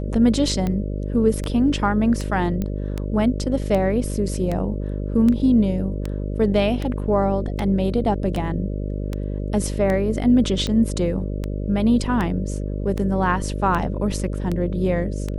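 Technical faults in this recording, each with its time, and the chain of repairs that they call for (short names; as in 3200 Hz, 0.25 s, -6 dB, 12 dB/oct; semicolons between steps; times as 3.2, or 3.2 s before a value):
buzz 50 Hz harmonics 12 -26 dBFS
tick 78 rpm -13 dBFS
2.62 pop -14 dBFS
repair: de-click; de-hum 50 Hz, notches 12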